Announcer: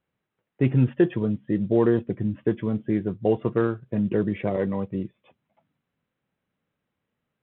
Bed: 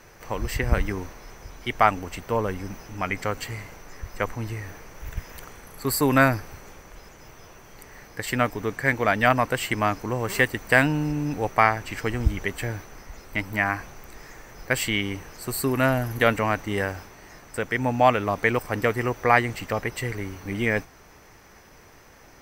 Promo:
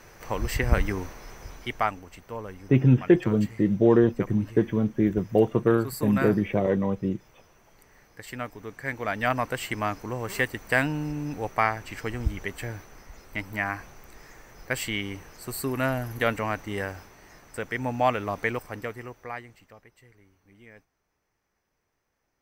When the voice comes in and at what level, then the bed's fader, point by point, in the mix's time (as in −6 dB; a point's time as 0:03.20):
2.10 s, +1.5 dB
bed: 0:01.52 0 dB
0:02.04 −11.5 dB
0:08.64 −11.5 dB
0:09.39 −5 dB
0:18.43 −5 dB
0:19.92 −27 dB